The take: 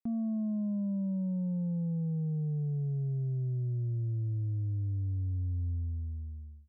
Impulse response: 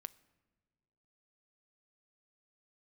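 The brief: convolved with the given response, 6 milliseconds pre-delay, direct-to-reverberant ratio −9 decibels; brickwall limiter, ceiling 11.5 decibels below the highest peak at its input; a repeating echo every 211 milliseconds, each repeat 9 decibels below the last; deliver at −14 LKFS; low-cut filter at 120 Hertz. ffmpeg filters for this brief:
-filter_complex "[0:a]highpass=120,alimiter=level_in=15.5dB:limit=-24dB:level=0:latency=1,volume=-15.5dB,aecho=1:1:211|422|633|844:0.355|0.124|0.0435|0.0152,asplit=2[link_01][link_02];[1:a]atrim=start_sample=2205,adelay=6[link_03];[link_02][link_03]afir=irnorm=-1:irlink=0,volume=14dB[link_04];[link_01][link_04]amix=inputs=2:normalize=0,volume=20.5dB"

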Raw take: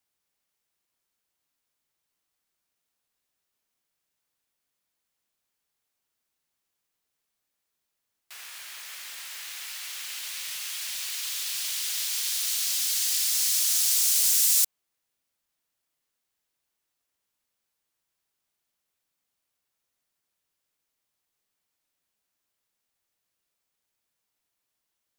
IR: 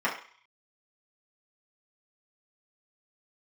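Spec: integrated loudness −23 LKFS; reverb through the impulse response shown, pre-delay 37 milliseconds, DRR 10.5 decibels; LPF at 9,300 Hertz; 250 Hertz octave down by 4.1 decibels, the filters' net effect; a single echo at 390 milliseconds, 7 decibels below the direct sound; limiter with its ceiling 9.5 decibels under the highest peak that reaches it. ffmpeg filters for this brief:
-filter_complex "[0:a]lowpass=9300,equalizer=frequency=250:width_type=o:gain=-6,alimiter=limit=-22.5dB:level=0:latency=1,aecho=1:1:390:0.447,asplit=2[link_01][link_02];[1:a]atrim=start_sample=2205,adelay=37[link_03];[link_02][link_03]afir=irnorm=-1:irlink=0,volume=-23dB[link_04];[link_01][link_04]amix=inputs=2:normalize=0,volume=7.5dB"

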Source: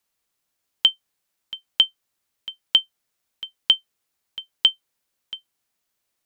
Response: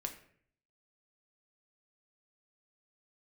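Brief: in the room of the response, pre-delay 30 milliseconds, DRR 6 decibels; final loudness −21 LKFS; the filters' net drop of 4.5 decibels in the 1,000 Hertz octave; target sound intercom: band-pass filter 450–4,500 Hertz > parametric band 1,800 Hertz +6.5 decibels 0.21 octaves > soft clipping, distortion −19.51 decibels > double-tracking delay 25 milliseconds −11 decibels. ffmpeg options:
-filter_complex "[0:a]equalizer=frequency=1000:width_type=o:gain=-6,asplit=2[link_01][link_02];[1:a]atrim=start_sample=2205,adelay=30[link_03];[link_02][link_03]afir=irnorm=-1:irlink=0,volume=-5dB[link_04];[link_01][link_04]amix=inputs=2:normalize=0,highpass=450,lowpass=4500,equalizer=frequency=1800:width_type=o:width=0.21:gain=6.5,asoftclip=threshold=-7dB,asplit=2[link_05][link_06];[link_06]adelay=25,volume=-11dB[link_07];[link_05][link_07]amix=inputs=2:normalize=0,volume=2.5dB"

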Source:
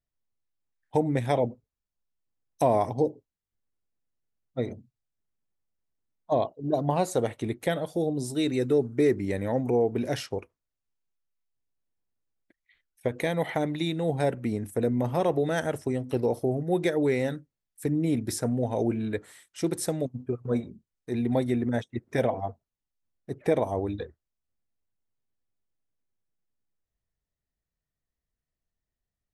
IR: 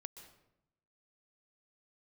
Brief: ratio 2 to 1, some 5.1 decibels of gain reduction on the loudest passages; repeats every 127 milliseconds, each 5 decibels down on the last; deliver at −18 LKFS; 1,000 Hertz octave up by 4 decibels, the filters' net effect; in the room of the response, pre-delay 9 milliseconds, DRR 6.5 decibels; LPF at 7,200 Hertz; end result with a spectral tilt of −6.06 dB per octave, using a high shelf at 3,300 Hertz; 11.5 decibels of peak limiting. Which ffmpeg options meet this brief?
-filter_complex "[0:a]lowpass=7200,equalizer=frequency=1000:width_type=o:gain=5.5,highshelf=frequency=3300:gain=5.5,acompressor=threshold=-26dB:ratio=2,alimiter=limit=-24dB:level=0:latency=1,aecho=1:1:127|254|381|508|635|762|889:0.562|0.315|0.176|0.0988|0.0553|0.031|0.0173,asplit=2[link_01][link_02];[1:a]atrim=start_sample=2205,adelay=9[link_03];[link_02][link_03]afir=irnorm=-1:irlink=0,volume=-1.5dB[link_04];[link_01][link_04]amix=inputs=2:normalize=0,volume=14dB"

